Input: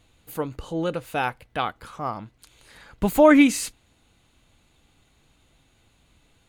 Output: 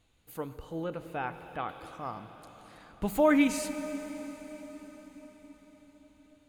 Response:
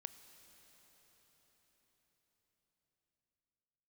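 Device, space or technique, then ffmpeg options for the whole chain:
cathedral: -filter_complex "[1:a]atrim=start_sample=2205[a];[0:a][a]afir=irnorm=-1:irlink=0,asettb=1/sr,asplit=3[b][c][d];[b]atrim=end=0.584[e];[c]atrim=start=0.58:end=1.69,asetpts=PTS-STARTPTS,afade=t=in:d=0.004:c=qsin,afade=t=out:st=1.106:d=0.004:c=qsin,acrossover=split=2500[f][g];[g]acompressor=threshold=-56dB:ratio=4:attack=1:release=60[h];[f][h]amix=inputs=2:normalize=0[i];[d]atrim=start=1.686[j];[e][i]acrossfade=d=0.004:c1=hsin:c2=qsin[k];[k][j]acrossfade=d=0.004:c1=qsin:c2=hsin,volume=-3.5dB"

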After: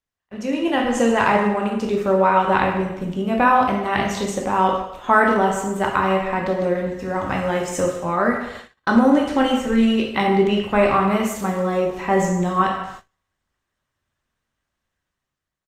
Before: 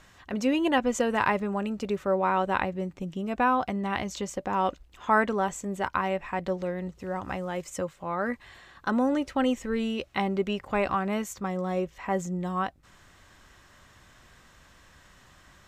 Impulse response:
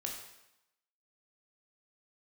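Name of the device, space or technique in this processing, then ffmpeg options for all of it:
speakerphone in a meeting room: -filter_complex "[1:a]atrim=start_sample=2205[a];[0:a][a]afir=irnorm=-1:irlink=0,asplit=2[b][c];[c]adelay=150,highpass=300,lowpass=3.4k,asoftclip=type=hard:threshold=-21.5dB,volume=-18dB[d];[b][d]amix=inputs=2:normalize=0,dynaudnorm=f=150:g=11:m=11dB,agate=range=-32dB:threshold=-36dB:ratio=16:detection=peak" -ar 48000 -c:a libopus -b:a 32k

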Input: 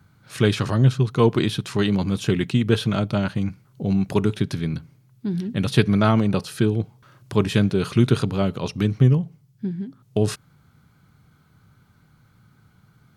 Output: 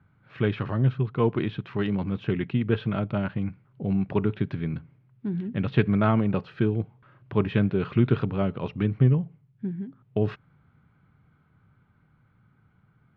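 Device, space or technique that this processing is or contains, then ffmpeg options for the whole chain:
action camera in a waterproof case: -af "lowpass=f=2.7k:w=0.5412,lowpass=f=2.7k:w=1.3066,dynaudnorm=f=660:g=9:m=8.5dB,volume=-6dB" -ar 44100 -c:a aac -b:a 128k

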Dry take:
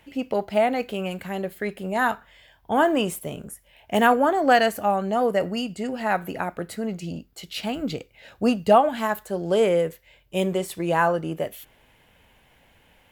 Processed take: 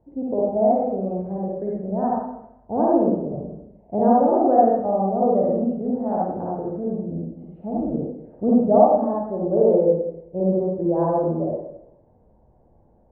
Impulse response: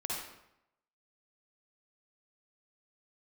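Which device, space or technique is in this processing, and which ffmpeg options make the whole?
next room: -filter_complex "[0:a]lowpass=f=690:w=0.5412,lowpass=f=690:w=1.3066[a];[1:a]atrim=start_sample=2205[b];[a][b]afir=irnorm=-1:irlink=0,volume=1.5dB"

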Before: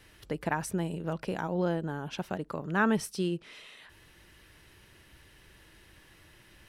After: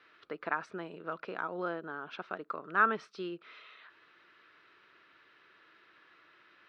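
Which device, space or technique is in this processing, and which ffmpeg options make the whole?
phone earpiece: -af "highpass=480,equalizer=f=560:t=q:w=4:g=-5,equalizer=f=840:t=q:w=4:g=-8,equalizer=f=1.3k:t=q:w=4:g=9,equalizer=f=1.9k:t=q:w=4:g=-4,equalizer=f=3k:t=q:w=4:g=-7,lowpass=f=3.6k:w=0.5412,lowpass=f=3.6k:w=1.3066"

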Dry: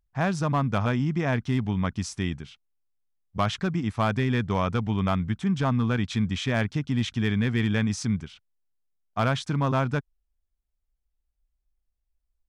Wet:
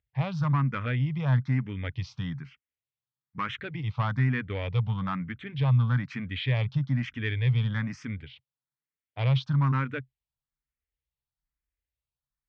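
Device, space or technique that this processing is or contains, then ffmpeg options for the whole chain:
barber-pole phaser into a guitar amplifier: -filter_complex "[0:a]asplit=2[a][b];[b]afreqshift=1.1[c];[a][c]amix=inputs=2:normalize=1,asoftclip=type=tanh:threshold=-19dB,highpass=80,equalizer=f=130:t=q:w=4:g=10,equalizer=f=210:t=q:w=4:g=-8,equalizer=f=360:t=q:w=4:g=-9,equalizer=f=690:t=q:w=4:g=-10,equalizer=f=2k:t=q:w=4:g=5,lowpass=f=4.1k:w=0.5412,lowpass=f=4.1k:w=1.3066"

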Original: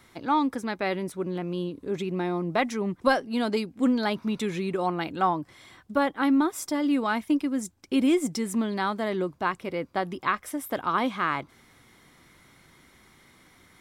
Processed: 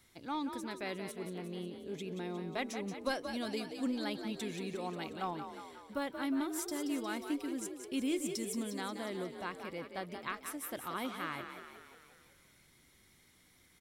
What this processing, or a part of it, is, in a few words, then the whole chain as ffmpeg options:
smiley-face EQ: -filter_complex "[0:a]lowshelf=f=120:g=9,lowshelf=f=440:g=-7.5,equalizer=f=1.1k:t=o:w=1.6:g=-7,highshelf=f=6.4k:g=5,asplit=8[a][b][c][d][e][f][g][h];[b]adelay=179,afreqshift=41,volume=-8dB[i];[c]adelay=358,afreqshift=82,volume=-12.7dB[j];[d]adelay=537,afreqshift=123,volume=-17.5dB[k];[e]adelay=716,afreqshift=164,volume=-22.2dB[l];[f]adelay=895,afreqshift=205,volume=-26.9dB[m];[g]adelay=1074,afreqshift=246,volume=-31.7dB[n];[h]adelay=1253,afreqshift=287,volume=-36.4dB[o];[a][i][j][k][l][m][n][o]amix=inputs=8:normalize=0,volume=-8dB"

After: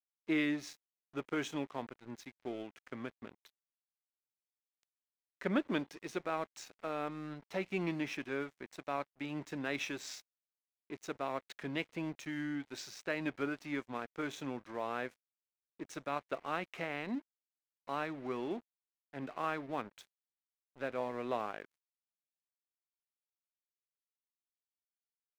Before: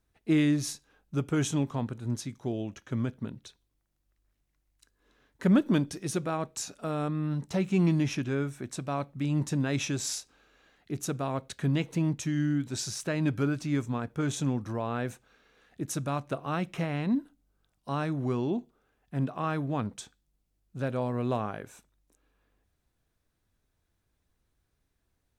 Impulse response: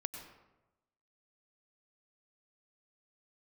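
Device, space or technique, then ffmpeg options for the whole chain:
pocket radio on a weak battery: -af "highpass=350,lowpass=4.3k,aeval=exprs='sgn(val(0))*max(abs(val(0))-0.00316,0)':c=same,equalizer=f=2.1k:t=o:w=0.59:g=5,volume=-3.5dB"

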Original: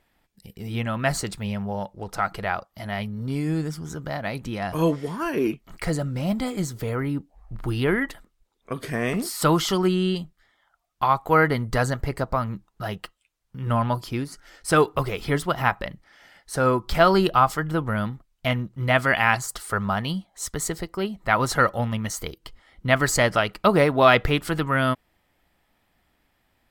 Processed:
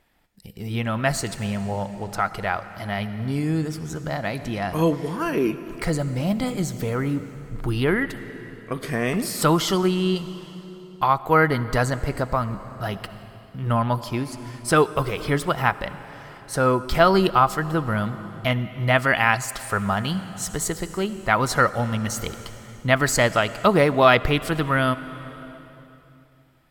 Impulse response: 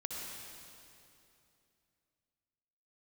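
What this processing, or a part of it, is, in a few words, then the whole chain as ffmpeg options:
ducked reverb: -filter_complex "[0:a]asplit=3[a][b][c];[1:a]atrim=start_sample=2205[d];[b][d]afir=irnorm=-1:irlink=0[e];[c]apad=whole_len=1177584[f];[e][f]sidechaincompress=threshold=-22dB:ratio=3:attack=5.1:release=758,volume=-7.5dB[g];[a][g]amix=inputs=2:normalize=0"

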